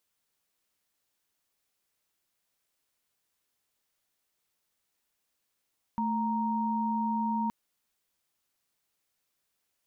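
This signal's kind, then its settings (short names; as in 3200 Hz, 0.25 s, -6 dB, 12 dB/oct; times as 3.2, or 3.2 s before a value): chord A3/A#5 sine, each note -29.5 dBFS 1.52 s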